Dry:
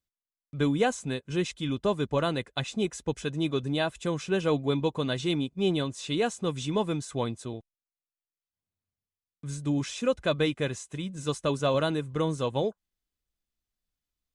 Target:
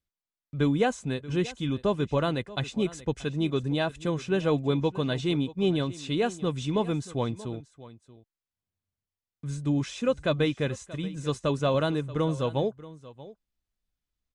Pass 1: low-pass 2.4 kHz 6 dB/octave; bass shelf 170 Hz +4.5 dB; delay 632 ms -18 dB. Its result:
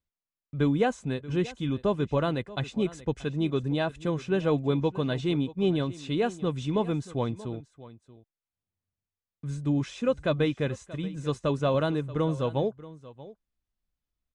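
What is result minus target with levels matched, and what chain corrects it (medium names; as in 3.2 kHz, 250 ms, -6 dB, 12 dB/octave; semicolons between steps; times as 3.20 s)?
4 kHz band -3.0 dB
low-pass 5.3 kHz 6 dB/octave; bass shelf 170 Hz +4.5 dB; delay 632 ms -18 dB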